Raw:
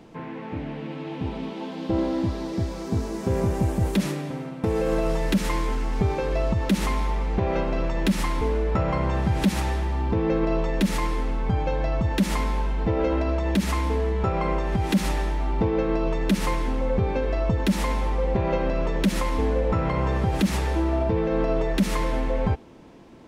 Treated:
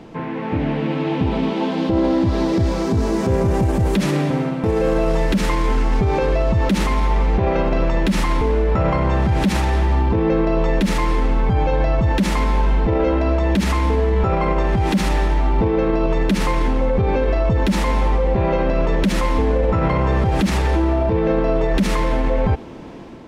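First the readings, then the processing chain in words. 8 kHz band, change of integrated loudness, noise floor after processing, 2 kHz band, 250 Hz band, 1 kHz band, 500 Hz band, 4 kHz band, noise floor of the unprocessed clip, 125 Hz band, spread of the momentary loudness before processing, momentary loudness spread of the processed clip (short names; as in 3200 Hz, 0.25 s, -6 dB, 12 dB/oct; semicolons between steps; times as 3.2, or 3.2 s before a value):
+3.0 dB, +6.5 dB, -25 dBFS, +6.0 dB, +6.0 dB, +7.0 dB, +6.5 dB, +5.0 dB, -36 dBFS, +6.5 dB, 5 LU, 2 LU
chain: limiter -22.5 dBFS, peak gain reduction 10.5 dB; high shelf 6900 Hz -8.5 dB; AGC gain up to 4 dB; gain +8.5 dB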